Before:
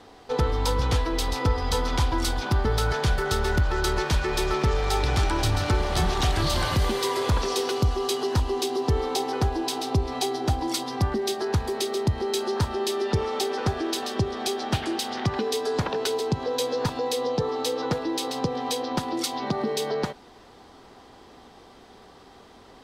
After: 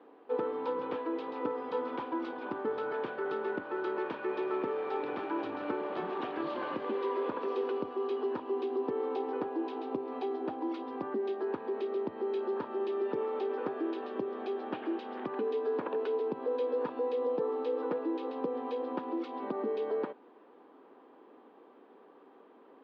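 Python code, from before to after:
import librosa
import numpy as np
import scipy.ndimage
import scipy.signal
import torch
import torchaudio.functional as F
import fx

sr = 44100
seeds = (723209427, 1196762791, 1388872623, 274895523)

y = fx.cabinet(x, sr, low_hz=260.0, low_slope=24, high_hz=2200.0, hz=(290.0, 480.0, 730.0, 1400.0, 2000.0), db=(4, 3, -6, -4, -9))
y = y * 10.0 ** (-6.0 / 20.0)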